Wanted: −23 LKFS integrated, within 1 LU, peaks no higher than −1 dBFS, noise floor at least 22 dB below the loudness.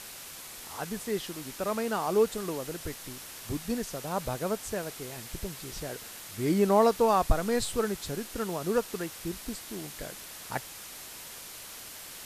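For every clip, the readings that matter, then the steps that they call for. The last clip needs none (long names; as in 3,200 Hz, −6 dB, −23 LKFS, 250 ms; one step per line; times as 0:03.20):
background noise floor −45 dBFS; target noise floor −54 dBFS; integrated loudness −32.0 LKFS; sample peak −12.0 dBFS; target loudness −23.0 LKFS
→ noise reduction from a noise print 9 dB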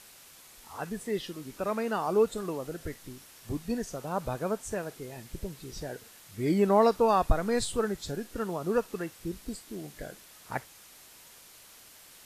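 background noise floor −54 dBFS; integrated loudness −31.0 LKFS; sample peak −12.0 dBFS; target loudness −23.0 LKFS
→ level +8 dB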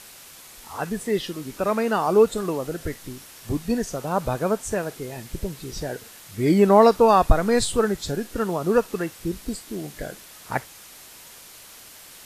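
integrated loudness −23.0 LKFS; sample peak −4.0 dBFS; background noise floor −46 dBFS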